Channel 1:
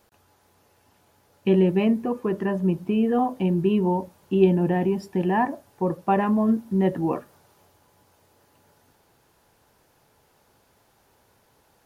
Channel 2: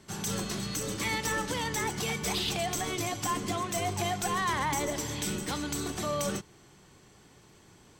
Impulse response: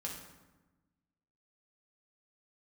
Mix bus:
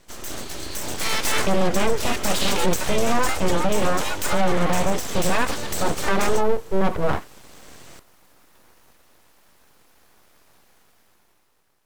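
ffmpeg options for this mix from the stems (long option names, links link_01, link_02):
-filter_complex "[0:a]volume=-5.5dB,asplit=2[link_01][link_02];[1:a]volume=2.5dB[link_03];[link_02]apad=whole_len=352479[link_04];[link_03][link_04]sidechaincompress=threshold=-29dB:ratio=5:attack=10:release=1230[link_05];[link_01][link_05]amix=inputs=2:normalize=0,dynaudnorm=framelen=240:gausssize=9:maxgain=13dB,aeval=exprs='abs(val(0))':channel_layout=same,alimiter=limit=-9dB:level=0:latency=1:release=28"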